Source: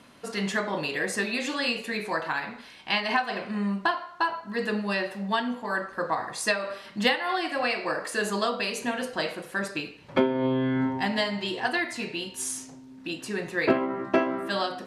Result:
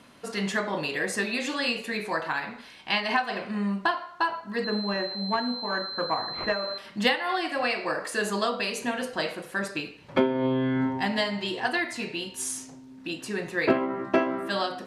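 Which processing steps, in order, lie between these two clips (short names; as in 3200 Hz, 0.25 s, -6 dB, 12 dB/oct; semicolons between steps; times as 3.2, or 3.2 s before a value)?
4.64–6.78 pulse-width modulation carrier 4100 Hz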